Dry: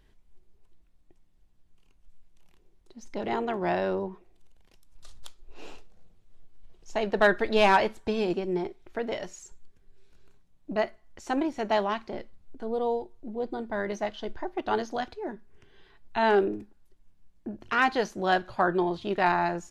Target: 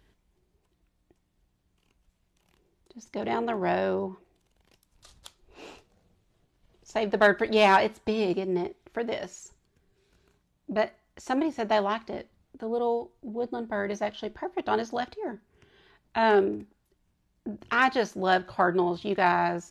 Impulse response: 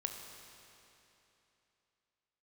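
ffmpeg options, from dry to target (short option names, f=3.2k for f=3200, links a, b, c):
-af "highpass=48,volume=1dB"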